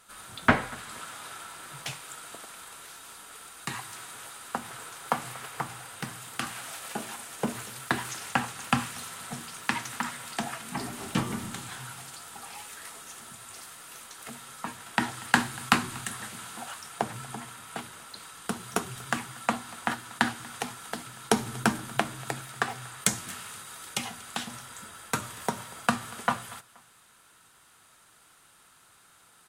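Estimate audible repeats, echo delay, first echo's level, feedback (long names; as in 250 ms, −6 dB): 2, 238 ms, −22.5 dB, 35%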